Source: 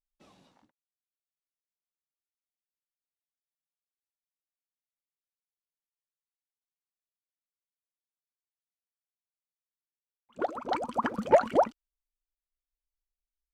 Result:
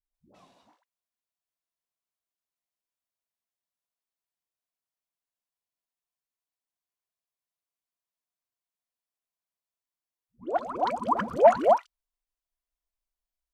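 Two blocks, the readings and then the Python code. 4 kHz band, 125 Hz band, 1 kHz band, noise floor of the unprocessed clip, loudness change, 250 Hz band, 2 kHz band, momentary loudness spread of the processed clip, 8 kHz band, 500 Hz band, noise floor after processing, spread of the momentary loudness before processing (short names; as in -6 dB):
0.0 dB, 0.0 dB, +5.0 dB, under -85 dBFS, +4.0 dB, 0.0 dB, +0.5 dB, 12 LU, n/a, +4.0 dB, under -85 dBFS, 12 LU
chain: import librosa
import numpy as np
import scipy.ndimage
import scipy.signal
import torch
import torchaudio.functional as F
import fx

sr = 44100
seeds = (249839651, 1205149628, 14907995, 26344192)

y = fx.small_body(x, sr, hz=(690.0, 1000.0), ring_ms=25, db=8)
y = fx.dispersion(y, sr, late='highs', ms=143.0, hz=380.0)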